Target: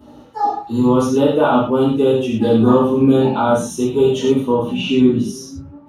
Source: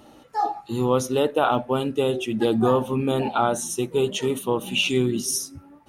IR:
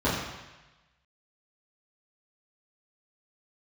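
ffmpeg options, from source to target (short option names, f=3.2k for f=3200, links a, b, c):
-filter_complex "[0:a]asetnsamples=n=441:p=0,asendcmd='4.33 highshelf g -3.5',highshelf=f=4.5k:g=8.5[a];[1:a]atrim=start_sample=2205,atrim=end_sample=6174[b];[a][b]afir=irnorm=-1:irlink=0,volume=-11dB"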